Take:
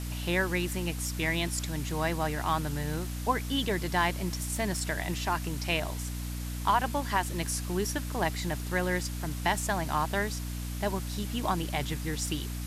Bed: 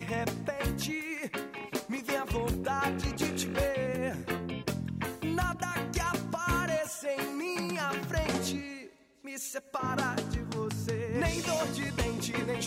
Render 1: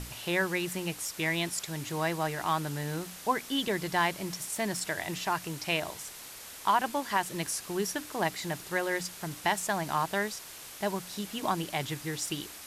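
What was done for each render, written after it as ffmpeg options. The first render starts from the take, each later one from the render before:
-af "bandreject=f=60:t=h:w=6,bandreject=f=120:t=h:w=6,bandreject=f=180:t=h:w=6,bandreject=f=240:t=h:w=6,bandreject=f=300:t=h:w=6"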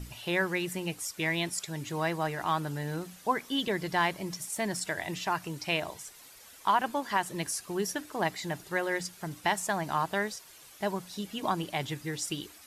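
-af "afftdn=nr=10:nf=-46"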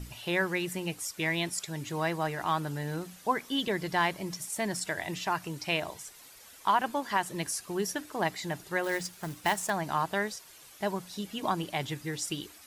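-filter_complex "[0:a]asettb=1/sr,asplit=3[a][b][c];[a]atrim=end=8.844[d];[b]atrim=start=8.84:end=9.7,asetpts=PTS-STARTPTS,afade=t=in:d=0.004:c=qsin,afade=t=out:st=0.856:d=0.004:c=qsin,acrusher=bits=3:mode=log:mix=0:aa=0.000001[e];[c]atrim=start=9.696[f];[d][e]acrossfade=d=0.004:c1=hsin:c2=qsin[g];[g][f]acrossfade=d=0.004:c1=qsin:c2=hsin"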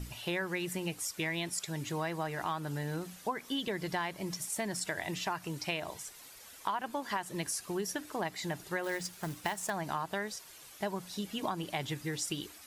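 -af "acompressor=threshold=-31dB:ratio=6"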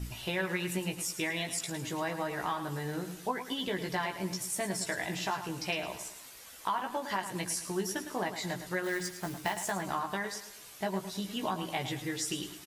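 -filter_complex "[0:a]asplit=2[a][b];[b]adelay=16,volume=-4dB[c];[a][c]amix=inputs=2:normalize=0,aecho=1:1:108|216|324|432:0.299|0.125|0.0527|0.0221"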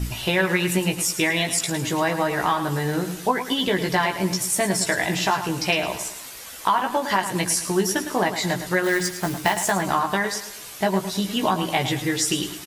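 -af "volume=12dB"

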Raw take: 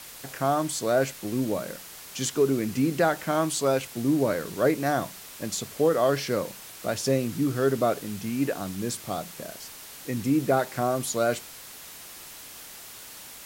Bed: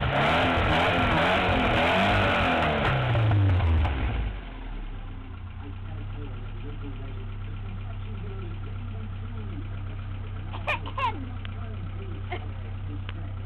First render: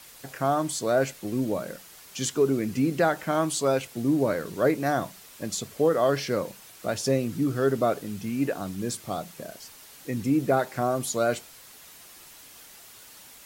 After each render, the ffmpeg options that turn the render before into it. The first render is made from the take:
-af "afftdn=nr=6:nf=-44"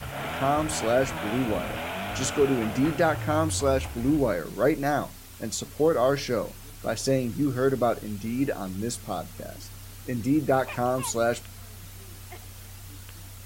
-filter_complex "[1:a]volume=-10.5dB[a];[0:a][a]amix=inputs=2:normalize=0"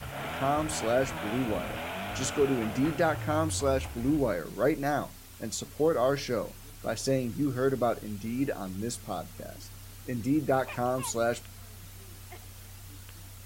-af "volume=-3.5dB"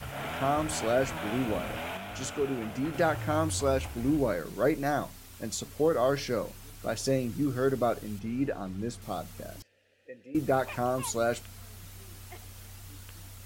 -filter_complex "[0:a]asettb=1/sr,asplit=3[a][b][c];[a]atrim=end=8.194[d];[b]atrim=start=8.19:end=9.02,asetpts=PTS-STARTPTS,afade=t=in:d=0.004:c=qsin,afade=t=out:st=0.826:d=0.004:c=qsin,lowpass=f=2.6k:p=1[e];[c]atrim=start=9.016[f];[d][e]acrossfade=d=0.004:c1=hsin:c2=qsin[g];[g][f]acrossfade=d=0.004:c1=qsin:c2=hsin,asettb=1/sr,asplit=3[h][i][j];[h]atrim=end=9.624[k];[i]atrim=start=9.62:end=10.35,asetpts=PTS-STARTPTS,afade=t=in:d=0.004:c=qsin,afade=t=out:st=0.726:d=0.004:c=qsin,asplit=3[l][m][n];[l]bandpass=f=530:t=q:w=8,volume=0dB[o];[m]bandpass=f=1.84k:t=q:w=8,volume=-6dB[p];[n]bandpass=f=2.48k:t=q:w=8,volume=-9dB[q];[o][p][q]amix=inputs=3:normalize=0[r];[j]atrim=start=10.346[s];[k][r]acrossfade=d=0.004:c1=hsin:c2=qsin[t];[t][s]acrossfade=d=0.004:c1=qsin:c2=hsin,asplit=3[u][v][w];[u]atrim=end=1.972[x];[v]atrim=start=1.968:end=2.942,asetpts=PTS-STARTPTS,volume=-4.5dB[y];[w]atrim=start=2.938[z];[x][y]acrossfade=d=0.004:c1=hsin:c2=hsin[aa];[aa][z]acrossfade=d=0.004:c1=hsin:c2=hsin"

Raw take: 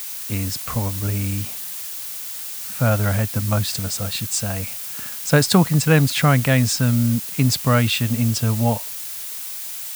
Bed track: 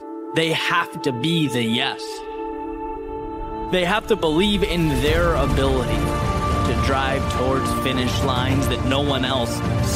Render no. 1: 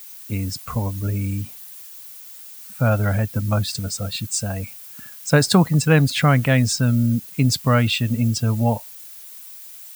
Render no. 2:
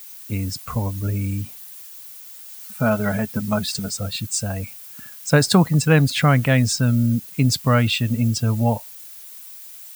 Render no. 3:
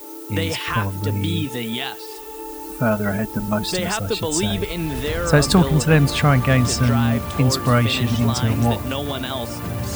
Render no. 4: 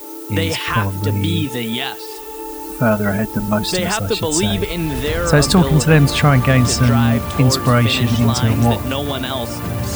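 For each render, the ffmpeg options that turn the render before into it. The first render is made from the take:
-af "afftdn=nr=12:nf=-31"
-filter_complex "[0:a]asettb=1/sr,asplit=3[a][b][c];[a]atrim=end=2.484[d];[b]atrim=start=2.48:end=3.9,asetpts=PTS-STARTPTS,afade=t=in:d=0.004:c=qsin,afade=t=out:st=1.416:d=0.004:c=qsin,aecho=1:1:4.7:0.65,atrim=end_sample=62622[e];[c]atrim=start=3.896[f];[d][e]acrossfade=d=0.004:c1=hsin:c2=qsin[g];[g][f]acrossfade=d=0.004:c1=qsin:c2=hsin"
-filter_complex "[1:a]volume=-5.5dB[a];[0:a][a]amix=inputs=2:normalize=0"
-af "volume=4dB,alimiter=limit=-2dB:level=0:latency=1"

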